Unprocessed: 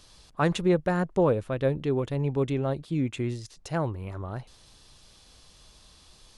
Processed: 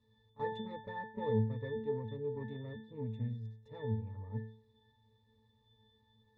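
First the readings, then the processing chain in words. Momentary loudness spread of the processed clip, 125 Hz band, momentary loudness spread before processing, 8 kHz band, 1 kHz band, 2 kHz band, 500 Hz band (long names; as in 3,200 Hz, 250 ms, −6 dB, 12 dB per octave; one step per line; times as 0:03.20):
11 LU, −9.5 dB, 13 LU, below −30 dB, −11.0 dB, −13.5 dB, −12.0 dB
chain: harmonic generator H 8 −19 dB, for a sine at −12 dBFS
resonances in every octave A, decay 0.49 s
echo ahead of the sound 32 ms −18.5 dB
level +6 dB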